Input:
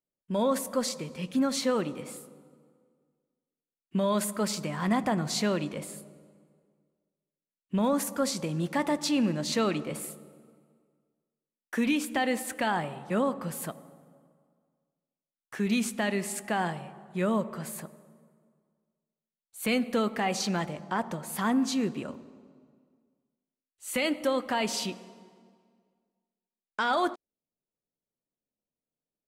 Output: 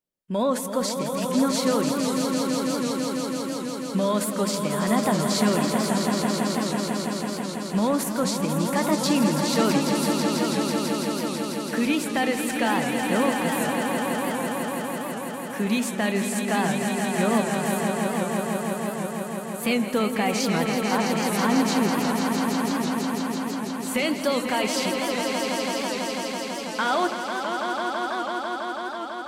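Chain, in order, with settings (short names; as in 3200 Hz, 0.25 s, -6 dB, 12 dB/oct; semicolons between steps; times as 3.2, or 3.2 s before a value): 24.09–24.49 bell 4700 Hz +12 dB 0.52 oct; swelling echo 0.165 s, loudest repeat 5, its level -7 dB; record warp 78 rpm, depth 100 cents; gain +3 dB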